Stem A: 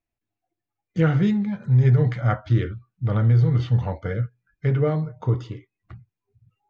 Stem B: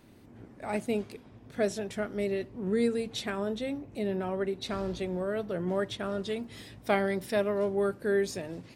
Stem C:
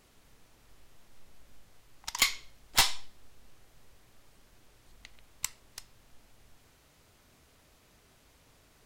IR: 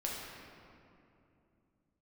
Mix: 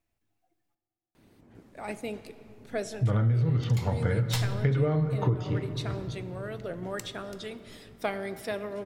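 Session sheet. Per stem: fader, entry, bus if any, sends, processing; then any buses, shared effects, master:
+3.0 dB, 0.00 s, muted 0.75–2.96 s, send -10.5 dB, none
-9.0 dB, 1.15 s, send -12 dB, harmonic-percussive split percussive +7 dB
-10.5 dB, 1.55 s, send -10 dB, none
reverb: on, RT60 2.7 s, pre-delay 6 ms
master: compression 8:1, threshold -22 dBFS, peak gain reduction 13.5 dB

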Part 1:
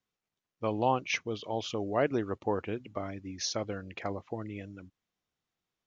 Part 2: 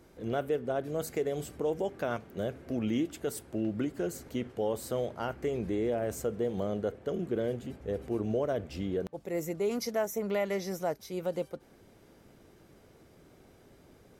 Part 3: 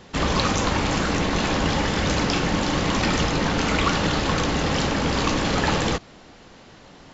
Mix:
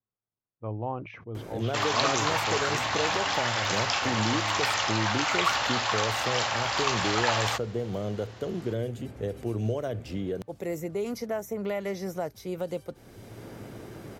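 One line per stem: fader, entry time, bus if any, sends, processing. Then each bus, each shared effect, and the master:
-6.0 dB, 0.00 s, no send, low-pass 1.3 kHz 12 dB/octave; decay stretcher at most 82 dB/s
-0.5 dB, 1.35 s, no send, three bands compressed up and down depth 70%
-1.5 dB, 1.60 s, no send, steep high-pass 640 Hz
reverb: none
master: peaking EQ 110 Hz +12.5 dB 0.26 oct

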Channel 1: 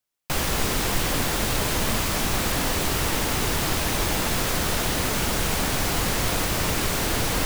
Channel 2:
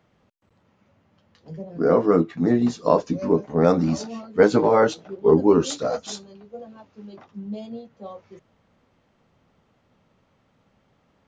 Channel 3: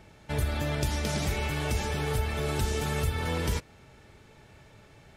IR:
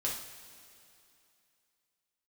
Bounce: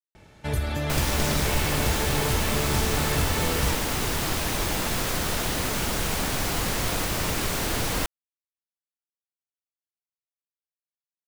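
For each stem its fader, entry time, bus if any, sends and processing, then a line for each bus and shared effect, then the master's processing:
-2.5 dB, 0.60 s, no send, none
mute
+2.0 dB, 0.15 s, no send, none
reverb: none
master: none

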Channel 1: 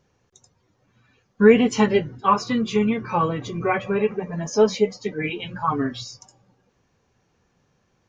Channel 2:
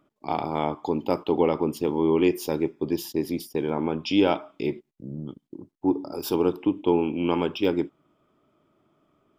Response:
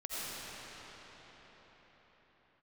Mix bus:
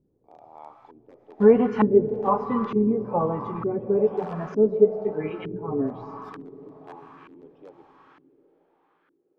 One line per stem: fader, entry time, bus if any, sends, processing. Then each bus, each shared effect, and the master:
-4.5 dB, 0.00 s, send -15 dB, none
-5.0 dB, 0.00 s, send -10 dB, integer overflow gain 12 dB; differentiator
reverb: on, pre-delay 45 ms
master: peaking EQ 96 Hz -3.5 dB 0.92 oct; LFO low-pass saw up 1.1 Hz 290–1500 Hz

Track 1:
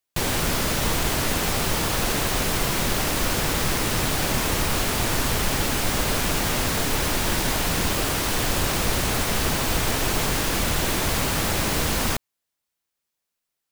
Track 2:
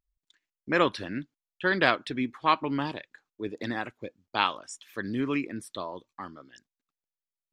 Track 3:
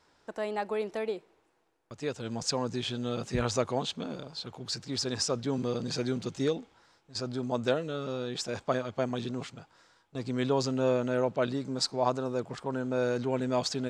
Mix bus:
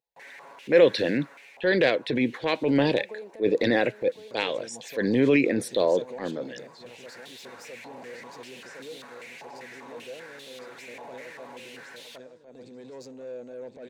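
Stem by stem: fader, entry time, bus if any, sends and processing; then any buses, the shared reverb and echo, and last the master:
+0.5 dB, 0.00 s, bus A, no send, no echo send, comb 7.2 ms, depth 96%; step-sequenced band-pass 5.1 Hz 850–3500 Hz; auto duck -22 dB, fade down 1.80 s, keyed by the second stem
-2.0 dB, 0.00 s, no bus, no send, no echo send, compression 16:1, threshold -27 dBFS, peak gain reduction 12 dB; graphic EQ 125/500/1000/2000/4000/8000 Hz +10/+9/-7/+5/+9/-5 dB; level rider gain up to 11.5 dB
-4.5 dB, 2.40 s, bus A, no send, echo send -15.5 dB, none
bus A: 0.0 dB, saturation -30 dBFS, distortion -12 dB; compression 3:1, threshold -43 dBFS, peak gain reduction 8 dB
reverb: none
echo: feedback delay 1060 ms, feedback 38%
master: high-pass 200 Hz 12 dB/octave; transient shaper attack -9 dB, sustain +3 dB; graphic EQ with 31 bands 500 Hz +8 dB, 1.25 kHz -12 dB, 3.15 kHz -7 dB, 5 kHz -5 dB

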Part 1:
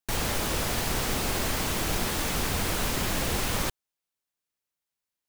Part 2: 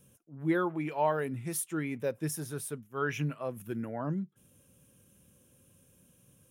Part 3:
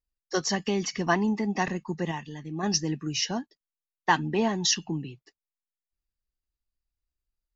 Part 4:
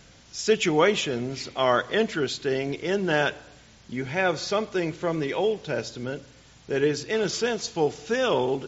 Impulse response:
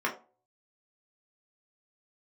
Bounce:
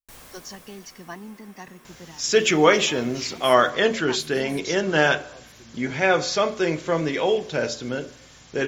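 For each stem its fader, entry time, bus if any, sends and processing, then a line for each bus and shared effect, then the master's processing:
-18.5 dB, 0.00 s, send -15 dB, auto duck -21 dB, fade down 1.60 s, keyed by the third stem
-13.5 dB, 1.90 s, no send, none
-14.0 dB, 0.00 s, no send, none
+1.5 dB, 1.85 s, send -13.5 dB, none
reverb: on, RT60 0.40 s, pre-delay 3 ms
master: treble shelf 5.3 kHz +7.5 dB

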